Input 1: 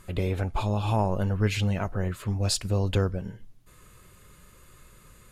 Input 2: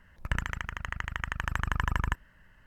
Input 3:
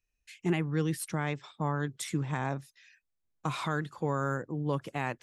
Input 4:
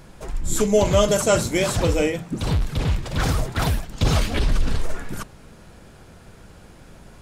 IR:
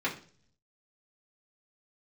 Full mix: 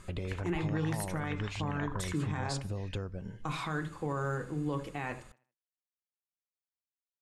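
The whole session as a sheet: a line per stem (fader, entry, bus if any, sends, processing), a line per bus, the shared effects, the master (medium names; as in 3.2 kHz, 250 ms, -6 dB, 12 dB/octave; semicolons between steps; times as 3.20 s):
-2.0 dB, 0.00 s, no send, no echo send, gain riding; low-pass 9.3 kHz 24 dB/octave; compression 4:1, threshold -33 dBFS, peak gain reduction 11.5 dB
-17.0 dB, 0.00 s, send -14 dB, no echo send, step-sequenced low-pass 5.4 Hz 730–6200 Hz
-4.5 dB, 0.00 s, send -11 dB, echo send -15 dB, none
mute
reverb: on, RT60 0.45 s, pre-delay 3 ms
echo: feedback delay 78 ms, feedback 38%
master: peak limiter -23.5 dBFS, peak gain reduction 6.5 dB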